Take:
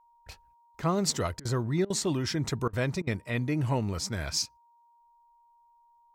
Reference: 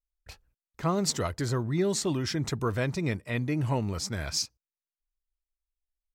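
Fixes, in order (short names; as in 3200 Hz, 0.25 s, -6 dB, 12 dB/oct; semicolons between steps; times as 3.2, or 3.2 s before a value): notch 940 Hz, Q 30; interpolate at 1.4/1.85/2.68/3.02, 50 ms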